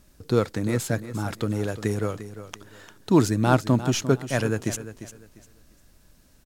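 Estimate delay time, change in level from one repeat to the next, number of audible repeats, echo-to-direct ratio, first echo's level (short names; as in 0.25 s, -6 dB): 0.349 s, -11.5 dB, 2, -12.5 dB, -13.0 dB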